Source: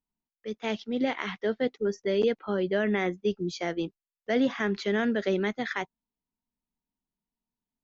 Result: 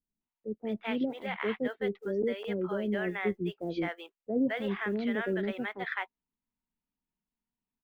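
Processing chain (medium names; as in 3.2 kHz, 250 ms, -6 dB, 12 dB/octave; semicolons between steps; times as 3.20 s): low-pass 3.1 kHz 24 dB/octave; in parallel at +0.5 dB: gain riding 0.5 s; on the sum: short-mantissa float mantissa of 6-bit; bands offset in time lows, highs 210 ms, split 600 Hz; trim -9 dB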